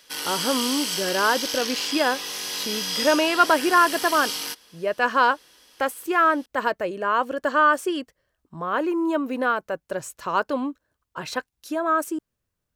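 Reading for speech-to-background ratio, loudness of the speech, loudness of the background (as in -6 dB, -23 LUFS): 3.5 dB, -23.5 LUFS, -27.0 LUFS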